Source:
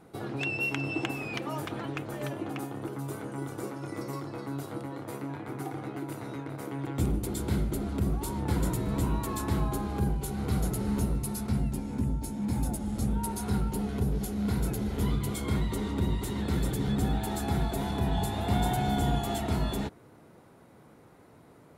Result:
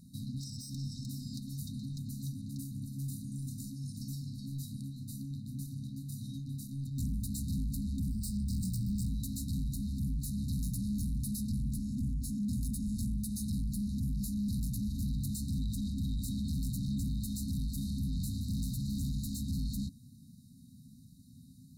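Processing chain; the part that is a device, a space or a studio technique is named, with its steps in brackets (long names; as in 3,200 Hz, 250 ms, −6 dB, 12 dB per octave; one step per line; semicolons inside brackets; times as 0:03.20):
0:08.10–0:09.09: EQ curve with evenly spaced ripples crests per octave 1.3, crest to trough 18 dB
saturation between pre-emphasis and de-emphasis (high-shelf EQ 8,400 Hz +10.5 dB; soft clipping −34.5 dBFS, distortion −6 dB; high-shelf EQ 8,400 Hz −10.5 dB)
brick-wall band-stop 270–3,700 Hz
level +4 dB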